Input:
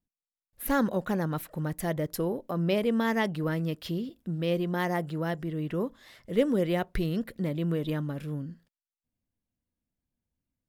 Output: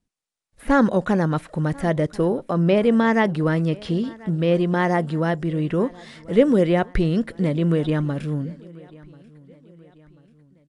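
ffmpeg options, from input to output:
-filter_complex "[0:a]acrossover=split=2500[s0][s1];[s1]acompressor=threshold=0.00447:ratio=4:attack=1:release=60[s2];[s0][s2]amix=inputs=2:normalize=0,aecho=1:1:1038|2076|3114:0.0708|0.0333|0.0156,volume=2.82" -ar 22050 -c:a aac -b:a 96k

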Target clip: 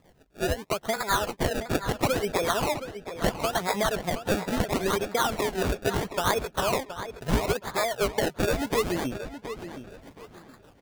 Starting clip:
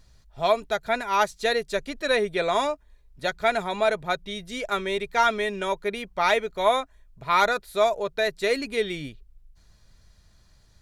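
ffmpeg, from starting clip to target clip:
-filter_complex "[0:a]highpass=160,highshelf=f=3600:g=11.5,dynaudnorm=f=140:g=9:m=2.51,asplit=2[s0][s1];[s1]alimiter=limit=0.355:level=0:latency=1:release=110,volume=0.944[s2];[s0][s2]amix=inputs=2:normalize=0,acompressor=threshold=0.126:ratio=6,acrossover=split=720[s3][s4];[s3]aeval=exprs='val(0)*(1-1/2+1/2*cos(2*PI*6.6*n/s))':c=same[s5];[s4]aeval=exprs='val(0)*(1-1/2-1/2*cos(2*PI*6.6*n/s))':c=same[s6];[s5][s6]amix=inputs=2:normalize=0,acrusher=samples=29:mix=1:aa=0.000001:lfo=1:lforange=29:lforate=0.74,asplit=2[s7][s8];[s8]adelay=721,lowpass=f=4900:p=1,volume=0.299,asplit=2[s9][s10];[s10]adelay=721,lowpass=f=4900:p=1,volume=0.27,asplit=2[s11][s12];[s12]adelay=721,lowpass=f=4900:p=1,volume=0.27[s13];[s7][s9][s11][s13]amix=inputs=4:normalize=0"

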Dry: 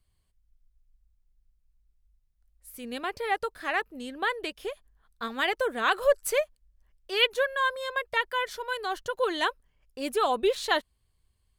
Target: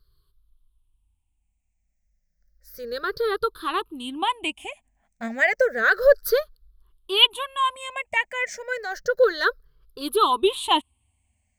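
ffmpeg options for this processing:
-af "afftfilt=real='re*pow(10,22/40*sin(2*PI*(0.6*log(max(b,1)*sr/1024/100)/log(2)-(-0.31)*(pts-256)/sr)))':imag='im*pow(10,22/40*sin(2*PI*(0.6*log(max(b,1)*sr/1024/100)/log(2)-(-0.31)*(pts-256)/sr)))':win_size=1024:overlap=0.75"

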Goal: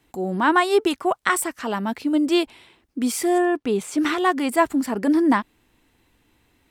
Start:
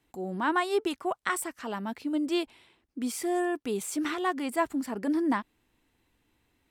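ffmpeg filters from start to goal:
-filter_complex "[0:a]asettb=1/sr,asplit=3[s0][s1][s2];[s0]atrim=end=3.384[s3];[s1]atrim=start=3.38:end=3.98,asetpts=PTS-STARTPTS,afade=t=in:d=0.004:c=qsin,afade=t=out:st=0.596:d=0.004:c=qsin,aemphasis=mode=reproduction:type=50kf[s4];[s2]atrim=start=3.976[s5];[s3][s4]acrossfade=d=0.004:c1=hsin:c2=qsin[s6];[s6][s5]acrossfade=d=0.004:c1=qsin:c2=hsin,volume=2.82"

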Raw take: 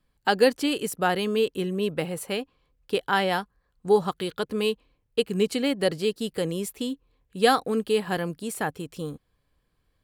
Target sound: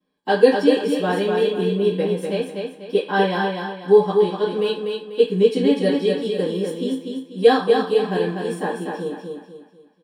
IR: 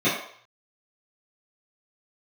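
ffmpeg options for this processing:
-filter_complex "[0:a]asettb=1/sr,asplit=3[s0][s1][s2];[s0]atrim=end=4.154[s3];[s1]atrim=start=4.15:end=4.61,asetpts=PTS-STARTPTS,afade=t=in:d=0.004:c=qsin,afade=t=out:st=0.456:d=0.004:c=qsin,acrossover=split=8600[s4][s5];[s5]acompressor=threshold=0.00141:ratio=4:attack=1:release=60[s6];[s4][s6]amix=inputs=2:normalize=0[s7];[s2]atrim=start=4.606[s8];[s3][s7]acrossfade=d=0.004:c1=hsin:c2=qsin[s9];[s9][s8]acrossfade=d=0.004:c1=qsin:c2=hsin,aecho=1:1:245|490|735|980|1225:0.596|0.214|0.0772|0.0278|0.01[s10];[1:a]atrim=start_sample=2205,asetrate=66150,aresample=44100[s11];[s10][s11]afir=irnorm=-1:irlink=0,volume=0.224"

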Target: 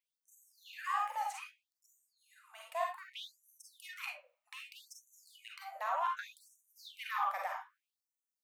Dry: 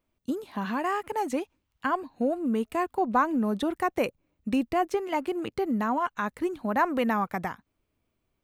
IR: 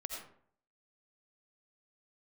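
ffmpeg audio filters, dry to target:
-filter_complex "[0:a]aeval=exprs='0.251*sin(PI/2*1.78*val(0)/0.251)':c=same[s0];[1:a]atrim=start_sample=2205,asetrate=83790,aresample=44100[s1];[s0][s1]afir=irnorm=-1:irlink=0,afftfilt=real='re*gte(b*sr/1024,500*pow(5900/500,0.5+0.5*sin(2*PI*0.64*pts/sr)))':imag='im*gte(b*sr/1024,500*pow(5900/500,0.5+0.5*sin(2*PI*0.64*pts/sr)))':win_size=1024:overlap=0.75,volume=0.473"

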